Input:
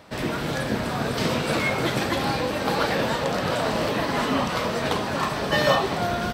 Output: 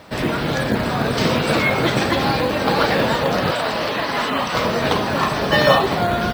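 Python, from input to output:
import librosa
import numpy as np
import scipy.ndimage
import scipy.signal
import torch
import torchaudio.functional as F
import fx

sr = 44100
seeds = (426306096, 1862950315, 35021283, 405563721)

y = fx.spec_gate(x, sr, threshold_db=-30, keep='strong')
y = fx.low_shelf(y, sr, hz=480.0, db=-9.5, at=(3.51, 4.54))
y = fx.quant_companded(y, sr, bits=6)
y = F.gain(torch.from_numpy(y), 6.0).numpy()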